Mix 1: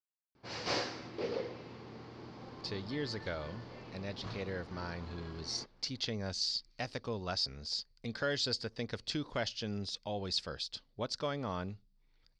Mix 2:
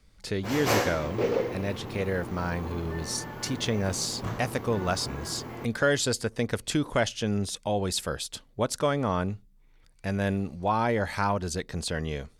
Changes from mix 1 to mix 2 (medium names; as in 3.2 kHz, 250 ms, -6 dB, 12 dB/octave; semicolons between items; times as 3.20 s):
speech: entry -2.40 s; master: remove four-pole ladder low-pass 5.2 kHz, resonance 65%